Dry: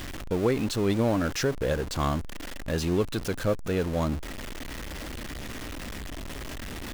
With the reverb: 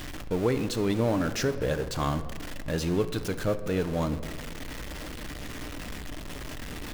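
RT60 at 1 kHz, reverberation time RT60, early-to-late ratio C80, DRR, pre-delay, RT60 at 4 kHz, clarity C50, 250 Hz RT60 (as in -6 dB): 1.5 s, 1.9 s, 14.5 dB, 9.0 dB, 7 ms, 0.95 s, 12.5 dB, 2.3 s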